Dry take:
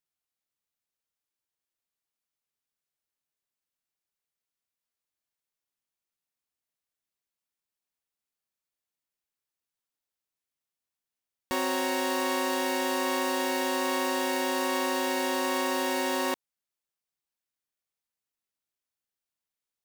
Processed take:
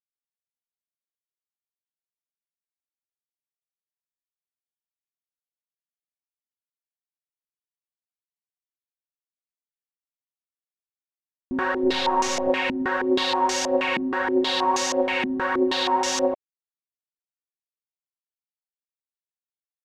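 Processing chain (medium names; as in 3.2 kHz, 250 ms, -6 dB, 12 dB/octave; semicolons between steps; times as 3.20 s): 11.83–12.50 s: one-bit delta coder 64 kbps, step -42 dBFS; phaser 1.6 Hz, delay 3.3 ms, feedback 50%; bit crusher 5-bit; step-sequenced low-pass 6.3 Hz 240–6200 Hz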